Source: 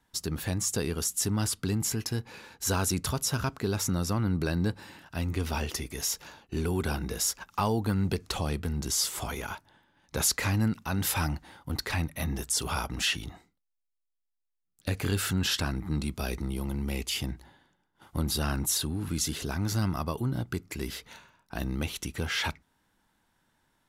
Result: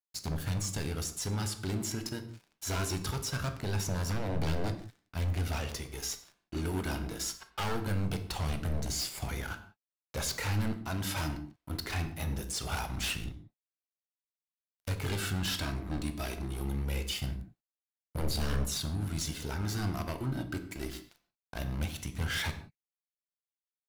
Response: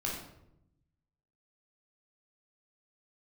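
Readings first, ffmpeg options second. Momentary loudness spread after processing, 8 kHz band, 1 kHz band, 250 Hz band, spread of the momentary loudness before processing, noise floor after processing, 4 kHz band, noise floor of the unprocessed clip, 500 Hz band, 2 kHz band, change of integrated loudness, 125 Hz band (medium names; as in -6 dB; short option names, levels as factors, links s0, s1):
8 LU, -7.5 dB, -4.5 dB, -5.5 dB, 9 LU, under -85 dBFS, -4.5 dB, -81 dBFS, -4.5 dB, -3.5 dB, -4.5 dB, -3.0 dB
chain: -filter_complex "[0:a]flanger=delay=0.4:depth=2.8:regen=42:speed=0.22:shape=sinusoidal,aeval=exprs='sgn(val(0))*max(abs(val(0))-0.00501,0)':c=same,acrossover=split=6200[s0][s1];[s1]acompressor=threshold=0.00891:ratio=4:attack=1:release=60[s2];[s0][s2]amix=inputs=2:normalize=0,aeval=exprs='0.0316*(abs(mod(val(0)/0.0316+3,4)-2)-1)':c=same,asplit=2[s3][s4];[1:a]atrim=start_sample=2205,afade=t=out:st=0.24:d=0.01,atrim=end_sample=11025[s5];[s4][s5]afir=irnorm=-1:irlink=0,volume=0.422[s6];[s3][s6]amix=inputs=2:normalize=0"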